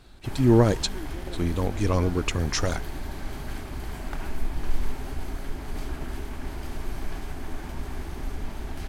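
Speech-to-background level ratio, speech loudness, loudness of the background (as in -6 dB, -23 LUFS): 12.5 dB, -24.5 LUFS, -37.0 LUFS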